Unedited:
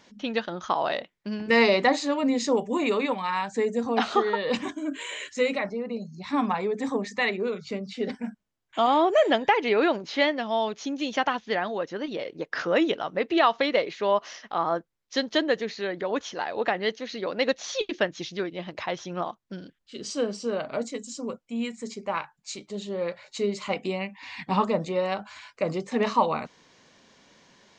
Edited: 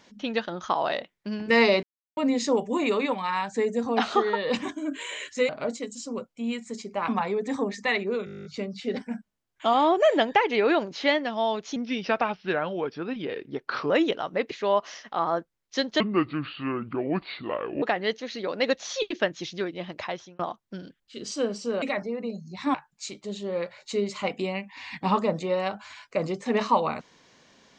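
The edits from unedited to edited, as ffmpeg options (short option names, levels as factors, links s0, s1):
-filter_complex "[0:a]asplit=23[s0][s1][s2][s3][s4][s5][s6][s7][s8][s9][s10][s11][s12][s13][s14][s15][s16][s17][s18][s19][s20][s21][s22];[s0]atrim=end=1.83,asetpts=PTS-STARTPTS,afade=t=out:st=1.826:d=0.004:c=hsin[s23];[s1]atrim=start=1.83:end=2.17,asetpts=PTS-STARTPTS,volume=0[s24];[s2]atrim=start=2.17:end=5.492,asetpts=PTS-STARTPTS,afade=t=in:d=0.004:c=hsin[s25];[s3]atrim=start=20.608:end=22.202[s26];[s4]atrim=start=6.408:end=7.602[s27];[s5]atrim=start=7.578:end=7.602[s28];[s6]atrim=start=7.578:end=7.602[s29];[s7]atrim=start=7.578:end=7.602[s30];[s8]atrim=start=7.578:end=7.602[s31];[s9]atrim=start=7.578:end=7.602[s32];[s10]atrim=start=7.578:end=7.602[s33];[s11]atrim=start=7.578:end=7.602[s34];[s12]atrim=start=7.578:end=7.602[s35];[s13]atrim=start=7.578:end=7.602[s36];[s14]atrim=start=7.578:end=10.894[s37];[s15]atrim=start=10.89:end=12.71,asetpts=PTS-STARTPTS,asetrate=37485,aresample=44100[s38];[s16]atrim=start=12.706:end=13.322[s39];[s17]atrim=start=13.898:end=15.394[s40];[s18]atrim=start=15.39:end=16.61,asetpts=PTS-STARTPTS,asetrate=29547,aresample=44100,atrim=end_sample=80301,asetpts=PTS-STARTPTS[s41];[s19]atrim=start=16.606:end=19.18,asetpts=PTS-STARTPTS,afade=t=out:st=2.204:d=0.37[s42];[s20]atrim=start=19.18:end=20.612,asetpts=PTS-STARTPTS,afade=t=in:d=0.004:c=hsin[s43];[s21]atrim=start=5.488:end=6.412[s44];[s22]atrim=start=22.198[s45];[s23][s24][s25]concat=n=3:v=0:a=1[s46];[s46][s26]acrossfade=d=0.004:c1=hsin:c2=hsin[s47];[s47][s27]acrossfade=d=0.004:c1=hsin:c2=hsin[s48];[s48][s28]acrossfade=d=0.004:c1=hsin:c2=hsin[s49];[s49][s29]acrossfade=d=0.004:c1=hsin:c2=hsin[s50];[s50][s30]acrossfade=d=0.004:c1=hsin:c2=hsin[s51];[s51][s31]acrossfade=d=0.004:c1=hsin:c2=hsin[s52];[s52][s32]acrossfade=d=0.004:c1=hsin:c2=hsin[s53];[s53][s33]acrossfade=d=0.004:c1=hsin:c2=hsin[s54];[s54][s34]acrossfade=d=0.004:c1=hsin:c2=hsin[s55];[s55][s35]acrossfade=d=0.004:c1=hsin:c2=hsin[s56];[s56][s36]acrossfade=d=0.004:c1=hsin:c2=hsin[s57];[s57][s37]acrossfade=d=0.004:c1=hsin:c2=hsin[s58];[s58][s38]acrossfade=d=0.004:c1=hsin:c2=hsin[s59];[s59][s39]acrossfade=d=0.004:c1=hsin:c2=hsin[s60];[s60][s40]acrossfade=d=0.004:c1=hsin:c2=hsin[s61];[s61][s41]acrossfade=d=0.004:c1=hsin:c2=hsin[s62];[s42][s43]concat=n=2:v=0:a=1[s63];[s62][s63]acrossfade=d=0.004:c1=hsin:c2=hsin[s64];[s64][s44]acrossfade=d=0.004:c1=hsin:c2=hsin[s65];[s65][s45]acrossfade=d=0.004:c1=hsin:c2=hsin"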